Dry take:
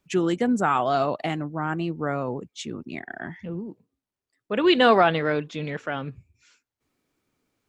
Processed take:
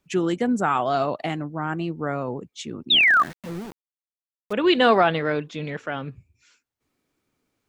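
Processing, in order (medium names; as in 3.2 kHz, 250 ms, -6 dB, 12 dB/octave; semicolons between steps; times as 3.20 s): 3.00–4.53 s: small samples zeroed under -35 dBFS; 2.90–3.23 s: painted sound fall 1.1–3.9 kHz -16 dBFS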